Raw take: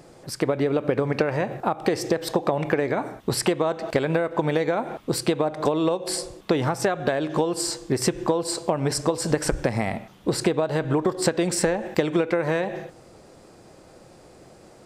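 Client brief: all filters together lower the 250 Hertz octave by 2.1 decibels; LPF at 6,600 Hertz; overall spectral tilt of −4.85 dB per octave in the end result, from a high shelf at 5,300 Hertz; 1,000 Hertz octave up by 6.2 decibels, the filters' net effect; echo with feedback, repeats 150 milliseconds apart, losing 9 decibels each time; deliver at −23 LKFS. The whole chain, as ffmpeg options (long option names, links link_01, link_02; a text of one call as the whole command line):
ffmpeg -i in.wav -af "lowpass=6600,equalizer=frequency=250:width_type=o:gain=-4,equalizer=frequency=1000:width_type=o:gain=8.5,highshelf=frequency=5300:gain=-9,aecho=1:1:150|300|450|600:0.355|0.124|0.0435|0.0152,volume=0.5dB" out.wav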